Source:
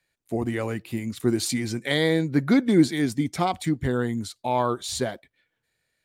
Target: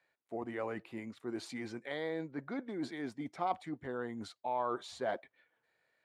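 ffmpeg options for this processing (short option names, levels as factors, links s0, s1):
-af "areverse,acompressor=threshold=0.0178:ratio=6,areverse,bandpass=f=860:t=q:w=0.9:csg=0,volume=1.78"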